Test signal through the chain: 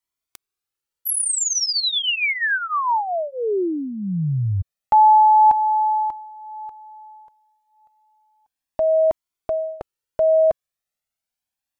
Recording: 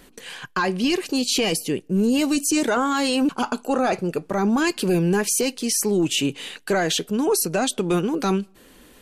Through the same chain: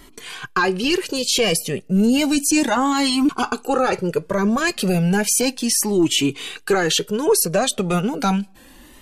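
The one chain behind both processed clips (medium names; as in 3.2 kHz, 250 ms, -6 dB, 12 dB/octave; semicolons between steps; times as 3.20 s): Shepard-style flanger rising 0.33 Hz; trim +8 dB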